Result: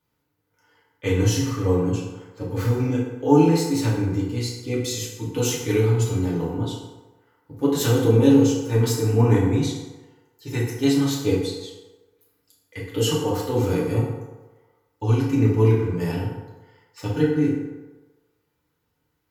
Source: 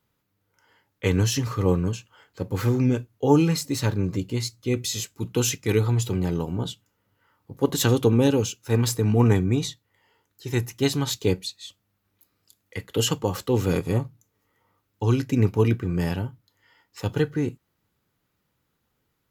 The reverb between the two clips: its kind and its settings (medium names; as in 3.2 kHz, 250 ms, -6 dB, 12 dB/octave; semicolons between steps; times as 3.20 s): FDN reverb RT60 1.2 s, low-frequency decay 0.75×, high-frequency decay 0.55×, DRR -5.5 dB; trim -6 dB